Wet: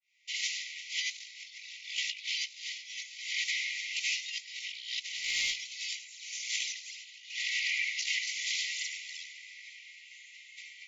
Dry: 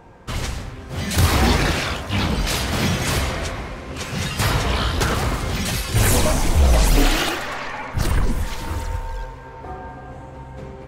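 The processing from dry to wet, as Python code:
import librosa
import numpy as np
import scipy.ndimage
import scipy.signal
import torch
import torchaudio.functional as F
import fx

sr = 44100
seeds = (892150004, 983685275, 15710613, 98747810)

y = fx.fade_in_head(x, sr, length_s=0.76)
y = fx.brickwall_bandpass(y, sr, low_hz=1900.0, high_hz=7400.0)
y = fx.echo_feedback(y, sr, ms=340, feedback_pct=40, wet_db=-18)
y = fx.dmg_noise_colour(y, sr, seeds[0], colour='pink', level_db=-63.0, at=(5.15, 5.69), fade=0.02)
y = fx.over_compress(y, sr, threshold_db=-36.0, ratio=-0.5)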